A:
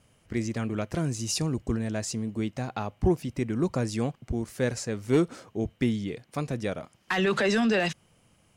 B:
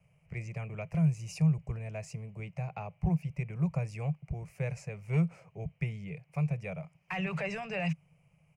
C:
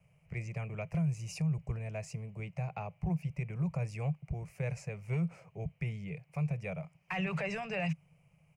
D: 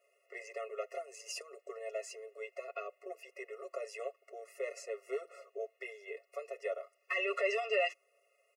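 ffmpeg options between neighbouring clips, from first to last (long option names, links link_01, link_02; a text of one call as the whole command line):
ffmpeg -i in.wav -filter_complex "[0:a]firequalizer=gain_entry='entry(110,0);entry(160,14);entry(240,-25);entry(420,-5);entry(630,1);entry(1600,-10);entry(2400,7);entry(3500,-20);entry(4900,-11)':delay=0.05:min_phase=1,acrossover=split=310|470|4900[link_01][link_02][link_03][link_04];[link_02]acompressor=threshold=-48dB:ratio=6[link_05];[link_01][link_05][link_03][link_04]amix=inputs=4:normalize=0,volume=-6dB" out.wav
ffmpeg -i in.wav -af "alimiter=level_in=1.5dB:limit=-24dB:level=0:latency=1:release=45,volume=-1.5dB" out.wav
ffmpeg -i in.wav -af "aecho=1:1:7.2:0.65,afftfilt=real='re*eq(mod(floor(b*sr/1024/360),2),1)':imag='im*eq(mod(floor(b*sr/1024/360),2),1)':win_size=1024:overlap=0.75,volume=4dB" out.wav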